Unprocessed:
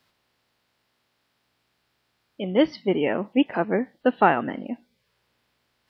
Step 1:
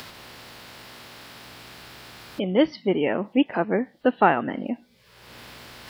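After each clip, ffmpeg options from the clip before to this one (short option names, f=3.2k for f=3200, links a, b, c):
-af "acompressor=mode=upward:threshold=-21dB:ratio=2.5"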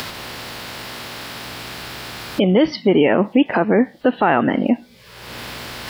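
-af "alimiter=level_in=16.5dB:limit=-1dB:release=50:level=0:latency=1,volume=-4.5dB"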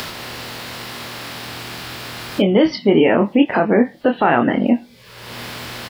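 -filter_complex "[0:a]asplit=2[a][b];[b]adelay=25,volume=-6dB[c];[a][c]amix=inputs=2:normalize=0"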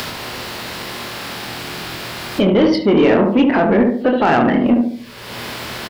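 -filter_complex "[0:a]asplit=2[a][b];[b]adelay=72,lowpass=f=1k:p=1,volume=-3.5dB,asplit=2[c][d];[d]adelay=72,lowpass=f=1k:p=1,volume=0.46,asplit=2[e][f];[f]adelay=72,lowpass=f=1k:p=1,volume=0.46,asplit=2[g][h];[h]adelay=72,lowpass=f=1k:p=1,volume=0.46,asplit=2[i][j];[j]adelay=72,lowpass=f=1k:p=1,volume=0.46,asplit=2[k][l];[l]adelay=72,lowpass=f=1k:p=1,volume=0.46[m];[a][c][e][g][i][k][m]amix=inputs=7:normalize=0,acontrast=80,volume=-4.5dB"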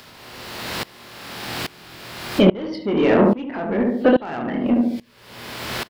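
-af "aeval=exprs='val(0)*pow(10,-23*if(lt(mod(-1.2*n/s,1),2*abs(-1.2)/1000),1-mod(-1.2*n/s,1)/(2*abs(-1.2)/1000),(mod(-1.2*n/s,1)-2*abs(-1.2)/1000)/(1-2*abs(-1.2)/1000))/20)':c=same,volume=3dB"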